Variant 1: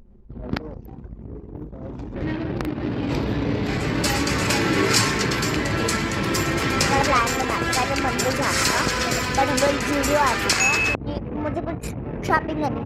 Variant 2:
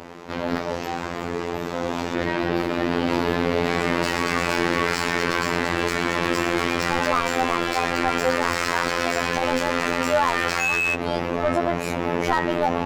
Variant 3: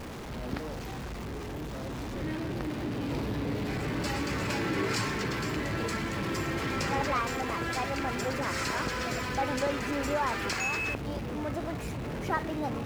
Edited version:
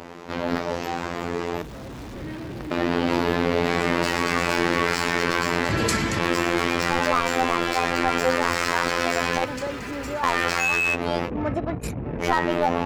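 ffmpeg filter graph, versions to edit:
-filter_complex "[2:a]asplit=2[a][b];[0:a]asplit=2[c][d];[1:a]asplit=5[e][f][g][h][i];[e]atrim=end=1.622[j];[a]atrim=start=1.618:end=2.712[k];[f]atrim=start=2.708:end=5.692[l];[c]atrim=start=5.688:end=6.192[m];[g]atrim=start=6.188:end=9.452[n];[b]atrim=start=9.448:end=10.232[o];[h]atrim=start=10.228:end=11.31[p];[d]atrim=start=11.25:end=12.24[q];[i]atrim=start=12.18[r];[j][k]acrossfade=d=0.004:c1=hsin:c2=hsin[s];[s][l]acrossfade=d=0.004:c1=hsin:c2=hsin[t];[t][m]acrossfade=d=0.004:c1=hsin:c2=hsin[u];[u][n]acrossfade=d=0.004:c1=hsin:c2=hsin[v];[v][o]acrossfade=d=0.004:c1=hsin:c2=hsin[w];[w][p]acrossfade=d=0.004:c1=hsin:c2=hsin[x];[x][q]acrossfade=d=0.06:c1=tri:c2=tri[y];[y][r]acrossfade=d=0.06:c1=tri:c2=tri"

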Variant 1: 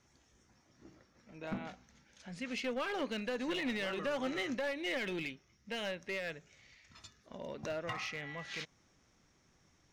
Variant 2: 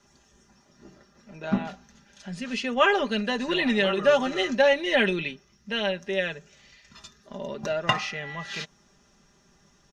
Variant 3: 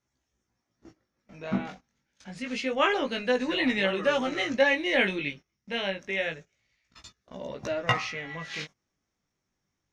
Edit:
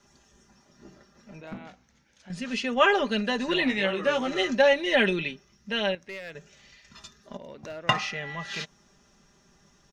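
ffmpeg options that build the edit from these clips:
-filter_complex "[0:a]asplit=3[a][b][c];[1:a]asplit=5[d][e][f][g][h];[d]atrim=end=1.412[i];[a]atrim=start=1.408:end=2.302[j];[e]atrim=start=2.298:end=3.652[k];[2:a]atrim=start=3.648:end=4.282[l];[f]atrim=start=4.278:end=5.952[m];[b]atrim=start=5.948:end=6.352[n];[g]atrim=start=6.348:end=7.372[o];[c]atrim=start=7.368:end=7.892[p];[h]atrim=start=7.888[q];[i][j]acrossfade=d=0.004:c1=hsin:c2=hsin[r];[r][k]acrossfade=d=0.004:c1=hsin:c2=hsin[s];[s][l]acrossfade=d=0.004:c1=hsin:c2=hsin[t];[t][m]acrossfade=d=0.004:c1=hsin:c2=hsin[u];[u][n]acrossfade=d=0.004:c1=hsin:c2=hsin[v];[v][o]acrossfade=d=0.004:c1=hsin:c2=hsin[w];[w][p]acrossfade=d=0.004:c1=hsin:c2=hsin[x];[x][q]acrossfade=d=0.004:c1=hsin:c2=hsin"

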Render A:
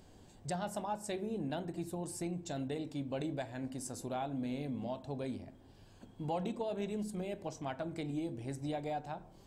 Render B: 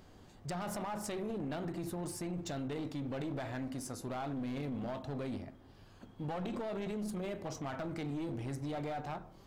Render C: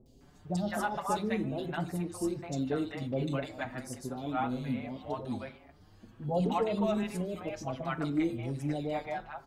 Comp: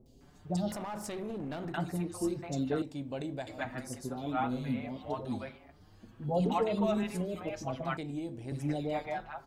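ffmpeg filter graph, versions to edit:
-filter_complex "[0:a]asplit=2[a][b];[2:a]asplit=4[c][d][e][f];[c]atrim=end=0.722[g];[1:a]atrim=start=0.718:end=1.742[h];[d]atrim=start=1.738:end=2.822[i];[a]atrim=start=2.818:end=3.472[j];[e]atrim=start=3.468:end=7.972[k];[b]atrim=start=7.968:end=8.522[l];[f]atrim=start=8.518[m];[g][h]acrossfade=d=0.004:c1=hsin:c2=hsin[n];[n][i]acrossfade=d=0.004:c1=hsin:c2=hsin[o];[o][j]acrossfade=d=0.004:c1=hsin:c2=hsin[p];[p][k]acrossfade=d=0.004:c1=hsin:c2=hsin[q];[q][l]acrossfade=d=0.004:c1=hsin:c2=hsin[r];[r][m]acrossfade=d=0.004:c1=hsin:c2=hsin"

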